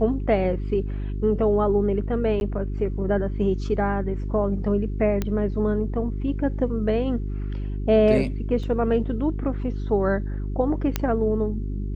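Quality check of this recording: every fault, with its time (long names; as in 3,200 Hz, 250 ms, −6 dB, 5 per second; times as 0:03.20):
mains hum 50 Hz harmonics 8 −28 dBFS
0:02.40–0:02.41: drop-out 11 ms
0:05.22: click −12 dBFS
0:08.63: drop-out 4.5 ms
0:10.96: click −8 dBFS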